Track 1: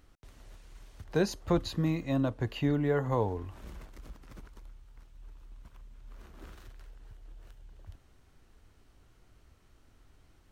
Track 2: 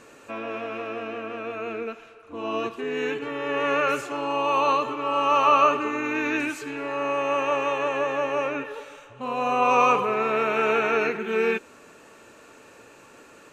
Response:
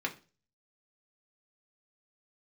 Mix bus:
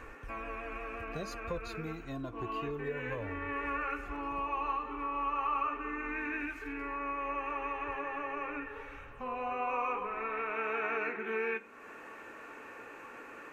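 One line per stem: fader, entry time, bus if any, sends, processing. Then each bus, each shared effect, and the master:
-5.5 dB, 0.00 s, no send, phaser 0.22 Hz, delay 2.9 ms, feedback 68%
-5.5 dB, 0.00 s, send -6 dB, graphic EQ 125/1000/2000/4000/8000 Hz -7/+5/+6/-8/-8 dB; auto duck -15 dB, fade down 0.30 s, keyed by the first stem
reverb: on, RT60 0.35 s, pre-delay 3 ms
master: bass shelf 150 Hz +4 dB; compression 2:1, threshold -41 dBFS, peak gain reduction 13.5 dB

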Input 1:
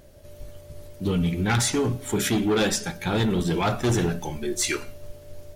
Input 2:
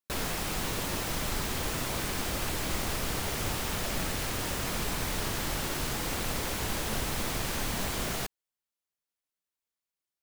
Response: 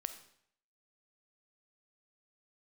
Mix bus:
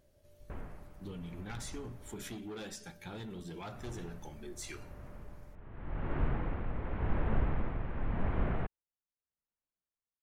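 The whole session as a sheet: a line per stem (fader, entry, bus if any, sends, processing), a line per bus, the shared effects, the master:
-17.0 dB, 0.00 s, no send, compression, threshold -24 dBFS, peak gain reduction 5.5 dB
-2.0 dB, 0.40 s, muted 2.34–3.74 s, no send, Bessel low-pass 1.4 kHz, order 6; bass shelf 140 Hz +10 dB; tremolo 0.87 Hz, depth 53%; auto duck -17 dB, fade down 0.95 s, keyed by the first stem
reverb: none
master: none

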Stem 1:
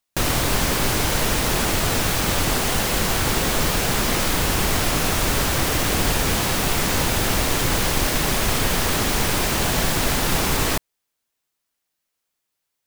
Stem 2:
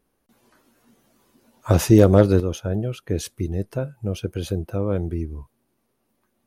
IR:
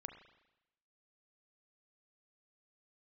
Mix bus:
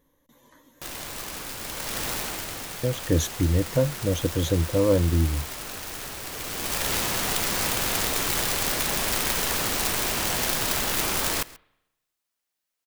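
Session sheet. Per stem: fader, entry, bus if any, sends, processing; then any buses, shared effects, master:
-5.5 dB, 0.65 s, send -10.5 dB, echo send -19 dB, integer overflow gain 13.5 dB; bass shelf 240 Hz -5.5 dB; auto duck -15 dB, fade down 0.75 s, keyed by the second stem
+1.5 dB, 0.00 s, muted 1.56–2.83 s, no send, no echo send, rippled EQ curve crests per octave 1.1, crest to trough 12 dB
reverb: on, RT60 0.90 s, pre-delay 33 ms
echo: delay 135 ms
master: none

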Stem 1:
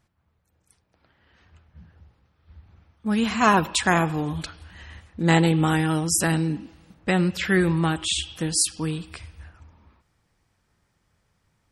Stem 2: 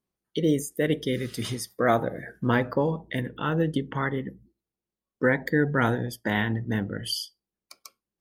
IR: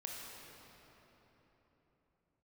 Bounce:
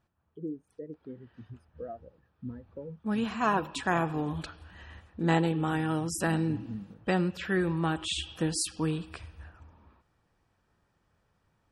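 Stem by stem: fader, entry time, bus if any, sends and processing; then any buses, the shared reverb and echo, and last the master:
-4.0 dB, 0.00 s, no send, tone controls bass -4 dB, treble -4 dB; band-stop 2.1 kHz, Q 8.4
-12.5 dB, 0.00 s, no send, compression, threshold -25 dBFS, peak gain reduction 8.5 dB; spectral contrast expander 2.5:1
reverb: none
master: treble shelf 2.5 kHz -7 dB; gain riding within 4 dB 0.5 s

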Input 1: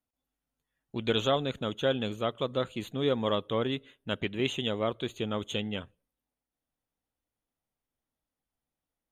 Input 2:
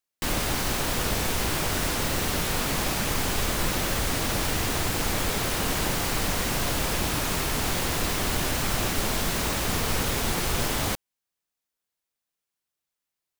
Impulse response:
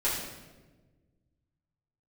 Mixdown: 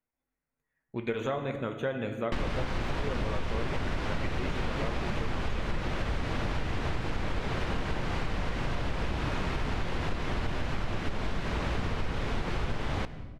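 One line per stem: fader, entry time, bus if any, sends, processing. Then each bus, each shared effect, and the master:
-2.5 dB, 0.00 s, send -12.5 dB, de-esser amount 85%; resonant high shelf 2.6 kHz -6 dB, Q 3
+2.0 dB, 2.10 s, send -23 dB, low-pass 2.8 kHz 12 dB/octave; bass shelf 140 Hz +6 dB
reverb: on, RT60 1.3 s, pre-delay 5 ms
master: compression 6:1, threshold -27 dBFS, peak gain reduction 13.5 dB

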